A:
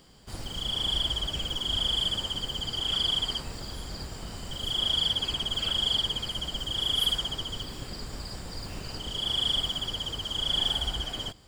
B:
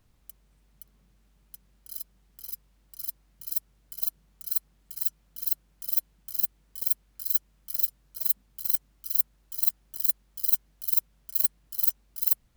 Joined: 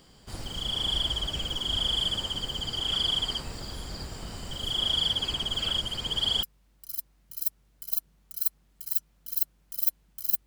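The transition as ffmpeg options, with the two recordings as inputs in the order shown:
-filter_complex "[0:a]apad=whole_dur=10.46,atrim=end=10.46,asplit=2[s0][s1];[s0]atrim=end=5.802[s2];[s1]atrim=start=5.798:end=6.432,asetpts=PTS-STARTPTS,areverse[s3];[1:a]atrim=start=2.528:end=6.56[s4];[s2][s3]acrossfade=d=0.004:c1=hsin:c2=hsin[s5];[s5][s4]acrossfade=d=0.004:c1=hsin:c2=hsin"

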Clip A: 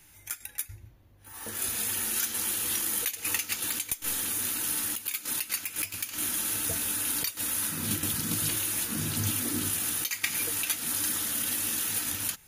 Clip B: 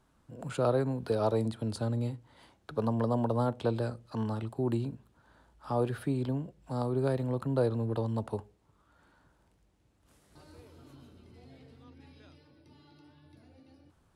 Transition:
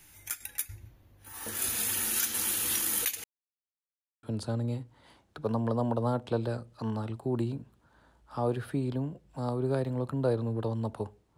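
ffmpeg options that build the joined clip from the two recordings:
-filter_complex "[0:a]apad=whole_dur=11.37,atrim=end=11.37,asplit=2[s0][s1];[s0]atrim=end=3.24,asetpts=PTS-STARTPTS,afade=t=out:st=3.236:d=0.004:c=hsin[s2];[s1]atrim=start=3.24:end=4.23,asetpts=PTS-STARTPTS,volume=0[s3];[1:a]atrim=start=1.56:end=8.7,asetpts=PTS-STARTPTS,afade=t=in:d=0.004:c=hsin[s4];[s2][s3][s4]concat=n=3:v=0:a=1"

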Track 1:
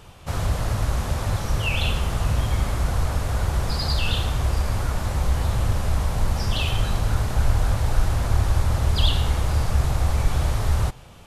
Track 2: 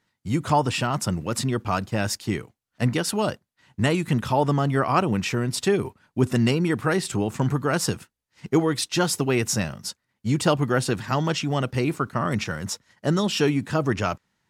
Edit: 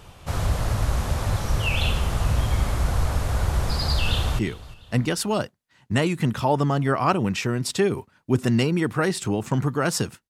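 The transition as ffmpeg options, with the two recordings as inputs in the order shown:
-filter_complex "[0:a]apad=whole_dur=10.29,atrim=end=10.29,atrim=end=4.392[s0];[1:a]atrim=start=2.268:end=8.17[s1];[s0][s1]acrossfade=d=0.004:c1=hsin:c2=hsin,asplit=2[s2][s3];[s3]afade=t=in:st=3.92:d=0.01,afade=t=out:st=4.39:d=0.01,aecho=0:1:350|700|1050:0.125893|0.050357|0.0201428[s4];[s2][s4]amix=inputs=2:normalize=0"

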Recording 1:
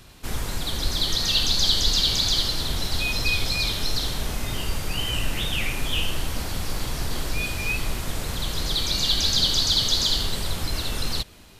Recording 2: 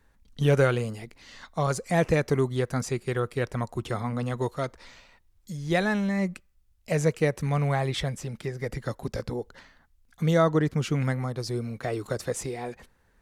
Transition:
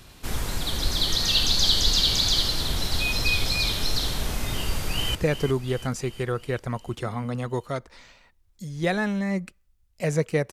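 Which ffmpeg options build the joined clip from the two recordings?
-filter_complex "[0:a]apad=whole_dur=10.52,atrim=end=10.52,atrim=end=5.152[s0];[1:a]atrim=start=2.028:end=7.4[s1];[s0][s1]acrossfade=d=0.004:c1=hsin:c2=hsin,asplit=2[s2][s3];[s3]afade=t=in:st=4.59:d=0.01,afade=t=out:st=5.15:d=0.01,aecho=0:1:360|720|1080|1440|1800|2160|2520:0.266073|0.159644|0.0957861|0.0574717|0.034483|0.0206898|0.0124139[s4];[s2][s4]amix=inputs=2:normalize=0"

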